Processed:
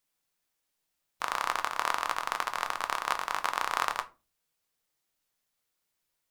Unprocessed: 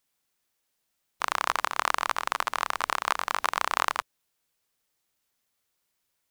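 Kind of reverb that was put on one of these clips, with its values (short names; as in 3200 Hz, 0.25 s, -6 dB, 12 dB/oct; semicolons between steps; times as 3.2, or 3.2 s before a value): shoebox room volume 120 m³, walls furnished, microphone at 0.57 m; gain -4 dB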